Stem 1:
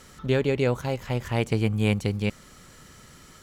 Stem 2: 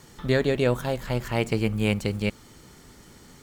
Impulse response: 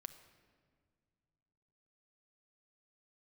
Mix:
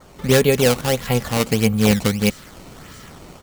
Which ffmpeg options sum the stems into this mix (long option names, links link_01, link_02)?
-filter_complex "[0:a]acrusher=samples=15:mix=1:aa=0.000001:lfo=1:lforange=24:lforate=1.6,adynamicequalizer=threshold=0.00708:dfrequency=2600:dqfactor=0.7:tfrequency=2600:tqfactor=0.7:attack=5:release=100:ratio=0.375:range=3:mode=boostabove:tftype=highshelf,volume=2.5dB[link_01];[1:a]highpass=frequency=68:width=0.5412,highpass=frequency=68:width=1.3066,volume=-1,adelay=3.3,volume=-4dB[link_02];[link_01][link_02]amix=inputs=2:normalize=0,dynaudnorm=framelen=120:gausssize=3:maxgain=6dB"